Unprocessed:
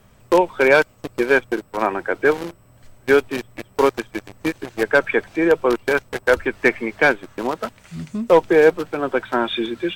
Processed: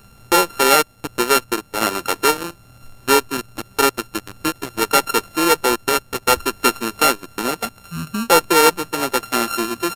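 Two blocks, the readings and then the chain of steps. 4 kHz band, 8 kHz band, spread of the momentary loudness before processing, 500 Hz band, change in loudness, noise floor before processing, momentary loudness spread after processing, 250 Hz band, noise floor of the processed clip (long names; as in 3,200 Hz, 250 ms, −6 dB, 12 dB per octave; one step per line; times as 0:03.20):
+11.0 dB, +19.5 dB, 14 LU, −3.5 dB, +1.0 dB, −52 dBFS, 13 LU, −0.5 dB, −49 dBFS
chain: samples sorted by size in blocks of 32 samples
in parallel at 0 dB: downward compressor, threshold −29 dBFS, peak gain reduction 19.5 dB
on the sum: downsampling to 32,000 Hz
high-shelf EQ 11,000 Hz +8 dB
level −1.5 dB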